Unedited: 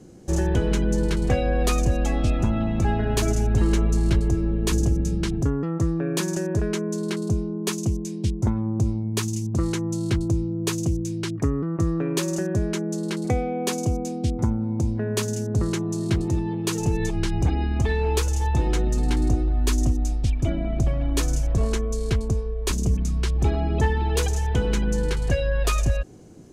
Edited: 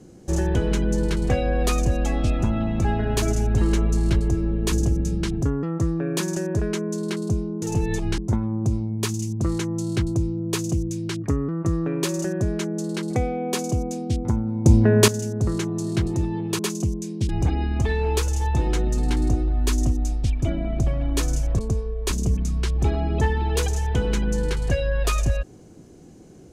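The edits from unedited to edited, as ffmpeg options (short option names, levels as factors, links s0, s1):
-filter_complex "[0:a]asplit=8[s0][s1][s2][s3][s4][s5][s6][s7];[s0]atrim=end=7.622[s8];[s1]atrim=start=16.728:end=17.292[s9];[s2]atrim=start=8.318:end=14.802[s10];[s3]atrim=start=14.798:end=15.222,asetpts=PTS-STARTPTS,volume=3.16[s11];[s4]atrim=start=15.218:end=16.732[s12];[s5]atrim=start=7.618:end=8.322[s13];[s6]atrim=start=17.288:end=21.592[s14];[s7]atrim=start=22.188[s15];[s8][s9]acrossfade=d=0.004:c1=hsin:c2=hsin[s16];[s16][s10]acrossfade=d=0.004:c1=hsin:c2=hsin[s17];[s17][s11]acrossfade=d=0.004:c1=hsin:c2=hsin[s18];[s18][s12]acrossfade=d=0.004:c1=hsin:c2=hsin[s19];[s19][s13]acrossfade=d=0.004:c1=hsin:c2=hsin[s20];[s20][s14]acrossfade=d=0.004:c1=hsin:c2=hsin[s21];[s21][s15]acrossfade=d=0.004:c1=hsin:c2=hsin"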